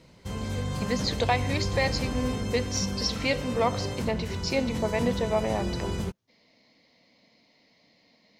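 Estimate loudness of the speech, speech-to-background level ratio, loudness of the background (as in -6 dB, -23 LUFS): -29.5 LUFS, 2.5 dB, -32.0 LUFS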